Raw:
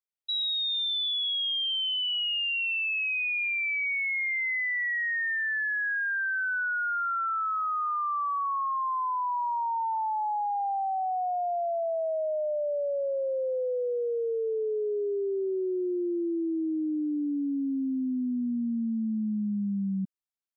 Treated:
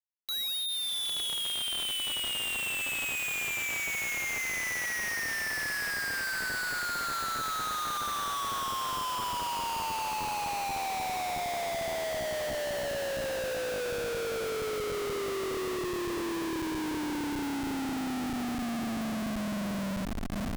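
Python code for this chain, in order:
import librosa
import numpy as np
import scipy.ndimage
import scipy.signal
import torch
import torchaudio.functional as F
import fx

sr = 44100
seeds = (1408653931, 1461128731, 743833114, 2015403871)

y = fx.echo_diffused(x, sr, ms=693, feedback_pct=68, wet_db=-8.5)
y = fx.schmitt(y, sr, flips_db=-34.0)
y = F.gain(torch.from_numpy(y), -4.5).numpy()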